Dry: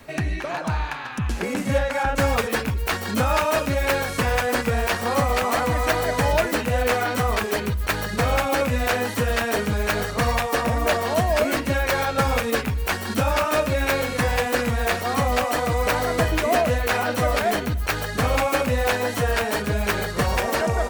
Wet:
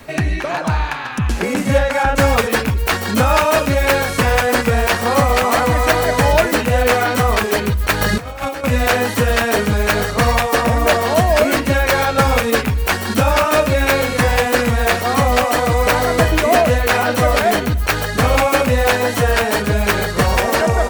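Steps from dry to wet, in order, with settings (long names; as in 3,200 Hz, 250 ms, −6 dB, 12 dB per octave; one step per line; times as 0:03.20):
0:08.01–0:08.64: compressor whose output falls as the input rises −27 dBFS, ratio −0.5
level +7 dB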